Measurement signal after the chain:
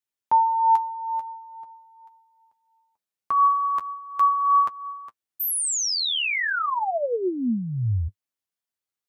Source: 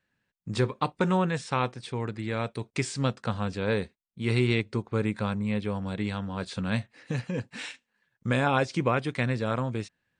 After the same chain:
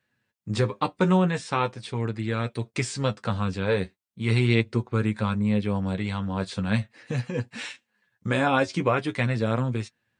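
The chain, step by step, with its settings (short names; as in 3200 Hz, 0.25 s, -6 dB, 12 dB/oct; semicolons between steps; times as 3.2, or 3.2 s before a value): HPF 54 Hz; flange 0.41 Hz, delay 8 ms, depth 3.2 ms, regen +32%; gain +6 dB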